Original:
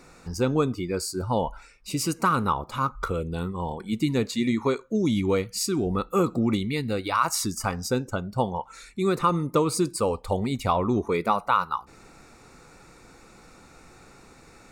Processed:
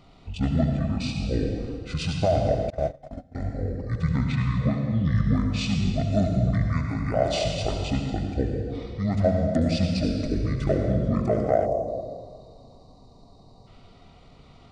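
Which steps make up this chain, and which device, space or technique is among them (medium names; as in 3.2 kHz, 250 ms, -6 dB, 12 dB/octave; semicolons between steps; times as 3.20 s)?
monster voice (pitch shift -11 st; bass shelf 130 Hz +4 dB; reverberation RT60 1.9 s, pre-delay 64 ms, DRR 2 dB); 11.66–13.67 s: time-frequency box 1.2–3.7 kHz -20 dB; dynamic bell 640 Hz, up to +5 dB, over -38 dBFS, Q 7.9; 2.70–3.35 s: gate -21 dBFS, range -25 dB; trim -3 dB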